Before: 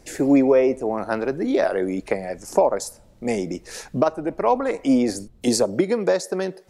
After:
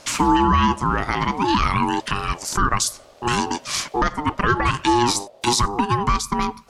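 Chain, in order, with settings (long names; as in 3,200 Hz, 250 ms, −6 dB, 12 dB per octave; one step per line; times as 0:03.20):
parametric band 3,500 Hz +12.5 dB 2.8 octaves, from 0:05.68 +4 dB
ring modulation 600 Hz
boost into a limiter +12 dB
level −6.5 dB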